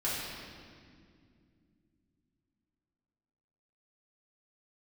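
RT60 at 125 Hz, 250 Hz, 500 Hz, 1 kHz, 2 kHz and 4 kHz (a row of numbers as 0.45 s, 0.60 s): 3.9 s, 3.9 s, 2.6 s, 1.9 s, 1.9 s, 1.7 s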